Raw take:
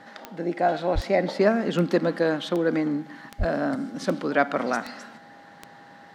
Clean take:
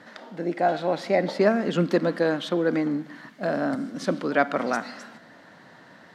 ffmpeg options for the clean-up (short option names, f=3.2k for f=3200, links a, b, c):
-filter_complex "[0:a]adeclick=t=4,bandreject=f=810:w=30,asplit=3[a][b][c];[a]afade=t=out:st=0.94:d=0.02[d];[b]highpass=f=140:w=0.5412,highpass=f=140:w=1.3066,afade=t=in:st=0.94:d=0.02,afade=t=out:st=1.06:d=0.02[e];[c]afade=t=in:st=1.06:d=0.02[f];[d][e][f]amix=inputs=3:normalize=0,asplit=3[g][h][i];[g]afade=t=out:st=3.38:d=0.02[j];[h]highpass=f=140:w=0.5412,highpass=f=140:w=1.3066,afade=t=in:st=3.38:d=0.02,afade=t=out:st=3.5:d=0.02[k];[i]afade=t=in:st=3.5:d=0.02[l];[j][k][l]amix=inputs=3:normalize=0"